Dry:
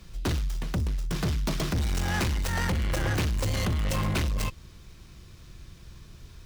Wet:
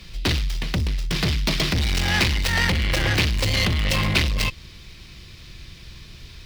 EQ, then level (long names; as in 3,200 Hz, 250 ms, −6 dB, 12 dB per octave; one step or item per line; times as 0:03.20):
flat-topped bell 3,100 Hz +9 dB
+4.5 dB